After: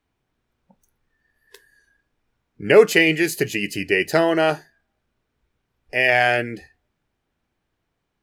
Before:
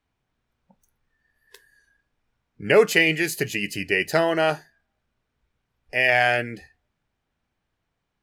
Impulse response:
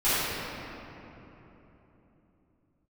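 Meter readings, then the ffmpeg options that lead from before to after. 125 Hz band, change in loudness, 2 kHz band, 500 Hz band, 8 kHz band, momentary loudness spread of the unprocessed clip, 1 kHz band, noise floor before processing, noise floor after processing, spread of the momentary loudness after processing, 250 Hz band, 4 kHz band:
+2.0 dB, +2.5 dB, +1.5 dB, +4.0 dB, +1.5 dB, 11 LU, +2.0 dB, -79 dBFS, -77 dBFS, 12 LU, +5.0 dB, +1.5 dB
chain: -af "equalizer=f=350:w=1.6:g=4.5,volume=1.19"

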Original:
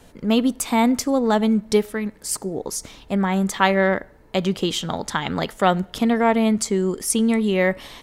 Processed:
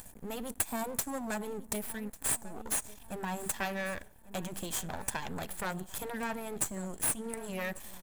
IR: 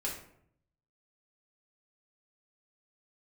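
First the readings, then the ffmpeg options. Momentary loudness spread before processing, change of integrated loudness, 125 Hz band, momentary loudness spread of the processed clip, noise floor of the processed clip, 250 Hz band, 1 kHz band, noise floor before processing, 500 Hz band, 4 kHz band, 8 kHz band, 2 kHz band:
9 LU, -14.5 dB, -16.5 dB, 8 LU, -54 dBFS, -20.5 dB, -16.5 dB, -50 dBFS, -18.5 dB, -16.0 dB, -6.0 dB, -13.0 dB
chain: -filter_complex "[0:a]acompressor=mode=upward:threshold=0.0141:ratio=2.5,aecho=1:1:1.2:0.53,aexciter=amount=15:drive=3.3:freq=7000,highshelf=f=5300:g=-7.5,acompressor=threshold=0.2:ratio=6,aeval=exprs='max(val(0),0)':c=same,equalizer=f=3000:w=1.5:g=-2,asplit=2[s0][s1];[s1]aecho=0:1:1146|2292|3438:0.112|0.037|0.0122[s2];[s0][s2]amix=inputs=2:normalize=0,afftfilt=real='re*lt(hypot(re,im),0.562)':imag='im*lt(hypot(re,im),0.562)':win_size=1024:overlap=0.75,volume=0.355"

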